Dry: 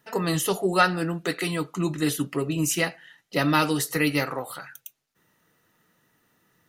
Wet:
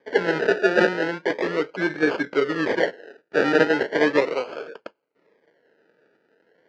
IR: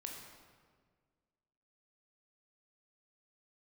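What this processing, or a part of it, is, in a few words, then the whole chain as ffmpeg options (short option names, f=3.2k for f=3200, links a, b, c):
circuit-bent sampling toy: -af "acrusher=samples=32:mix=1:aa=0.000001:lfo=1:lforange=19.2:lforate=0.37,highpass=430,equalizer=f=450:t=q:w=4:g=7,equalizer=f=750:t=q:w=4:g=-8,equalizer=f=1.1k:t=q:w=4:g=-9,equalizer=f=1.6k:t=q:w=4:g=6,equalizer=f=2.6k:t=q:w=4:g=-5,equalizer=f=3.6k:t=q:w=4:g=-9,lowpass=f=4k:w=0.5412,lowpass=f=4k:w=1.3066,volume=7.5dB"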